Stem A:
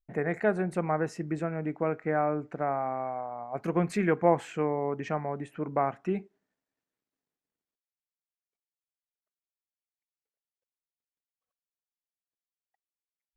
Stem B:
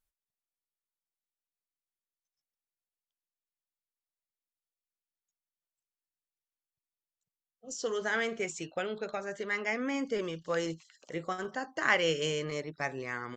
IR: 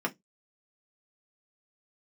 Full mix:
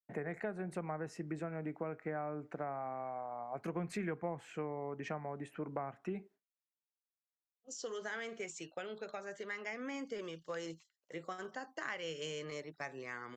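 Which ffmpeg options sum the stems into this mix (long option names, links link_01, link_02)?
-filter_complex "[0:a]volume=-2.5dB[link_01];[1:a]volume=-6dB[link_02];[link_01][link_02]amix=inputs=2:normalize=0,agate=range=-33dB:threshold=-50dB:ratio=3:detection=peak,lowshelf=frequency=160:gain=-8,acrossover=split=140[link_03][link_04];[link_04]acompressor=threshold=-38dB:ratio=5[link_05];[link_03][link_05]amix=inputs=2:normalize=0"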